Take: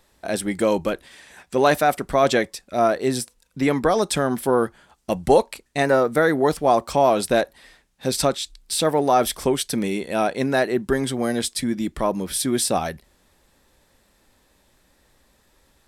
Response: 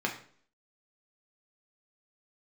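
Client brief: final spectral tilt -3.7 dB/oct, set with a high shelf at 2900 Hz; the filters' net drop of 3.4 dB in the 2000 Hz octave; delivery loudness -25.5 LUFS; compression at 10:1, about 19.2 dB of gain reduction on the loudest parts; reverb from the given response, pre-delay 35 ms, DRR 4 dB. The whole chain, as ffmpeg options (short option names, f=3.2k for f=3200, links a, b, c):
-filter_complex "[0:a]equalizer=f=2k:t=o:g=-7.5,highshelf=f=2.9k:g=8,acompressor=threshold=-32dB:ratio=10,asplit=2[a][b];[1:a]atrim=start_sample=2205,adelay=35[c];[b][c]afir=irnorm=-1:irlink=0,volume=-11.5dB[d];[a][d]amix=inputs=2:normalize=0,volume=9.5dB"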